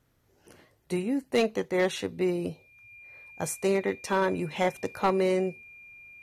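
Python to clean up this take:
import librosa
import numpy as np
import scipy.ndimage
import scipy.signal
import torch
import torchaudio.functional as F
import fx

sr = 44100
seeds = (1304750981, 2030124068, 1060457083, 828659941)

y = fx.fix_declip(x, sr, threshold_db=-17.0)
y = fx.notch(y, sr, hz=2400.0, q=30.0)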